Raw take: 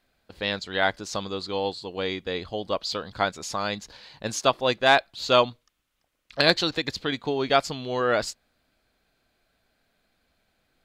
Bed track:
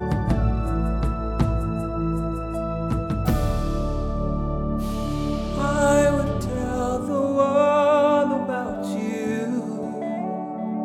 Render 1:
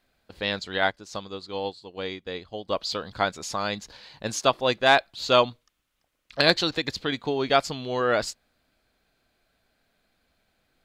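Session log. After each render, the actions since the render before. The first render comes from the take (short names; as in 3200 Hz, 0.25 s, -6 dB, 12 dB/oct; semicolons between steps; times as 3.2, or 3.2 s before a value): 0.78–2.69 upward expander, over -44 dBFS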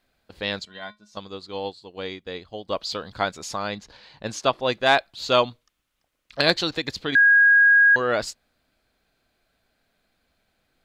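0.65–1.17 resonator 210 Hz, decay 0.16 s, harmonics odd, mix 90%; 3.57–4.72 high shelf 5900 Hz -> 10000 Hz -12 dB; 7.15–7.96 bleep 1640 Hz -11.5 dBFS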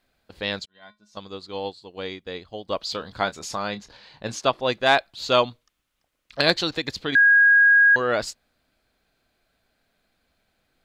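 0.66–1.3 fade in; 2.92–4.35 doubler 25 ms -12 dB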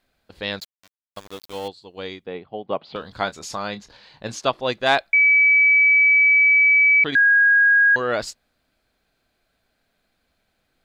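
0.6–1.68 sample gate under -36.5 dBFS; 2.26–2.96 speaker cabinet 120–2800 Hz, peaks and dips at 150 Hz +9 dB, 230 Hz +4 dB, 400 Hz +5 dB, 780 Hz +7 dB, 1700 Hz -4 dB; 5.13–7.04 bleep 2290 Hz -11.5 dBFS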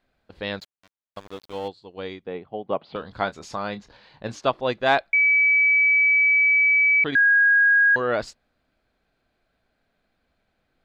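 LPF 2200 Hz 6 dB/oct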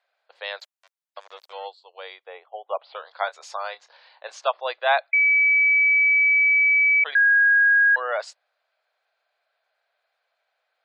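steep high-pass 560 Hz 36 dB/oct; spectral gate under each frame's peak -30 dB strong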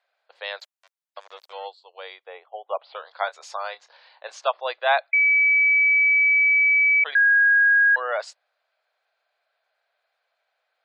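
nothing audible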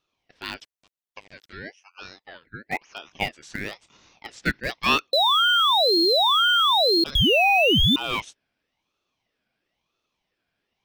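in parallel at -12 dB: bit-crush 4-bit; on the sum: ring modulator with a swept carrier 1400 Hz, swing 40%, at 1 Hz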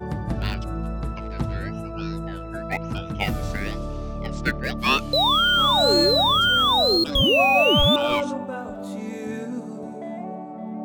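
add bed track -5.5 dB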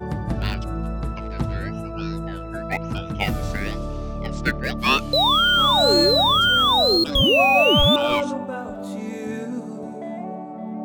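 gain +1.5 dB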